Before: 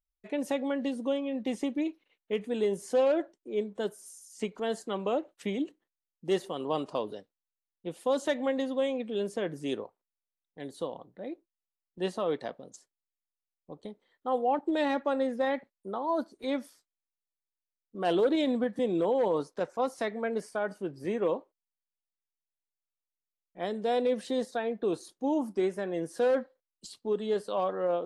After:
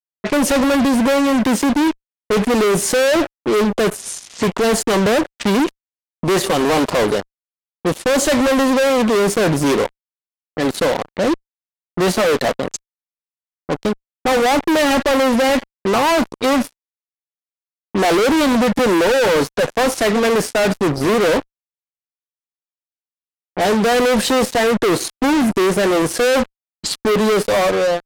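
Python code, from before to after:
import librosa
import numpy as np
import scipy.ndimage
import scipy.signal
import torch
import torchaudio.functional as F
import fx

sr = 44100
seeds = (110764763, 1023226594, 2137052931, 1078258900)

y = fx.fade_out_tail(x, sr, length_s=0.74)
y = fx.fuzz(y, sr, gain_db=46.0, gate_db=-50.0)
y = fx.env_lowpass(y, sr, base_hz=1600.0, full_db=-16.0)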